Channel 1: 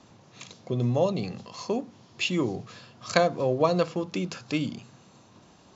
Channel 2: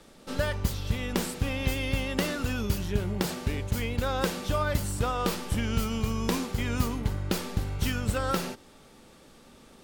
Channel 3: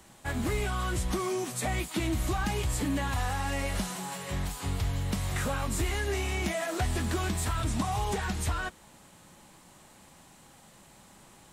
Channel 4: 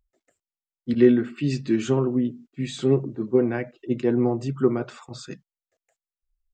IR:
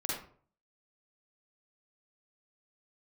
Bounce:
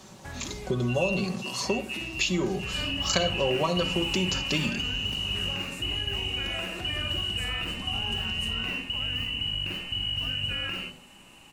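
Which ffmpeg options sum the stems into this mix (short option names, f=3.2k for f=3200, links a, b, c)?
-filter_complex "[0:a]highshelf=f=5.6k:g=11.5,aecho=1:1:5.3:0.65,volume=2.5dB,asplit=2[a][b];[b]volume=-21.5dB[c];[1:a]lowshelf=f=220:g=8.5,adelay=2350,volume=-5.5dB,asplit=2[d][e];[e]volume=-14dB[f];[2:a]acompressor=threshold=-38dB:ratio=4,volume=-5dB,asplit=2[g][h];[h]volume=-5dB[i];[3:a]volume=-15dB[j];[a][g]amix=inputs=2:normalize=0,acompressor=threshold=-25dB:ratio=6,volume=0dB[k];[d][j]amix=inputs=2:normalize=0,lowpass=f=2.6k:t=q:w=0.5098,lowpass=f=2.6k:t=q:w=0.6013,lowpass=f=2.6k:t=q:w=0.9,lowpass=f=2.6k:t=q:w=2.563,afreqshift=-3000,alimiter=limit=-24dB:level=0:latency=1,volume=0dB[l];[4:a]atrim=start_sample=2205[m];[c][f][i]amix=inputs=3:normalize=0[n];[n][m]afir=irnorm=-1:irlink=0[o];[k][l][o]amix=inputs=3:normalize=0"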